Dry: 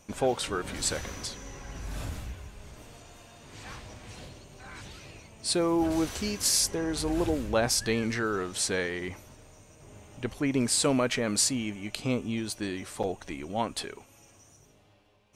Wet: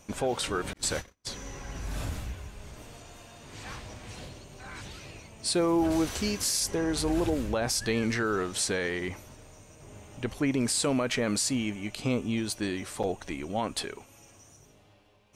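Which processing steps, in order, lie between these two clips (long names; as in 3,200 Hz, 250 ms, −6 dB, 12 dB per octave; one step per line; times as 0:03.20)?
0:00.73–0:01.27: noise gate −33 dBFS, range −44 dB
brickwall limiter −20.5 dBFS, peak gain reduction 8 dB
level +2 dB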